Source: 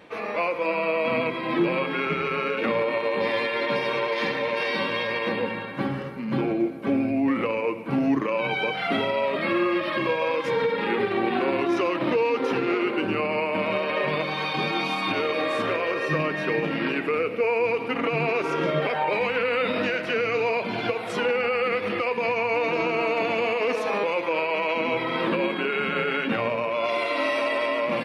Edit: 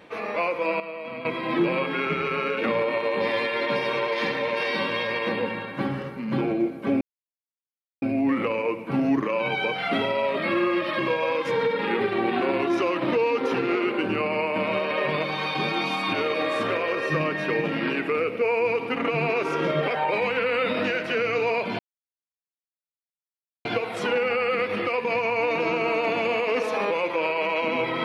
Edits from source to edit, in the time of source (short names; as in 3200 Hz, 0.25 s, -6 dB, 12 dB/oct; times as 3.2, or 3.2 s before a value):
0.8–1.25 gain -11 dB
7.01 insert silence 1.01 s
20.78 insert silence 1.86 s